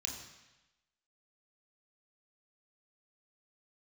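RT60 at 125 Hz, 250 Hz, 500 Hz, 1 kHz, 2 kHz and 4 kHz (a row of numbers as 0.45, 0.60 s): 1.0, 1.0, 0.95, 1.1, 1.1, 1.1 s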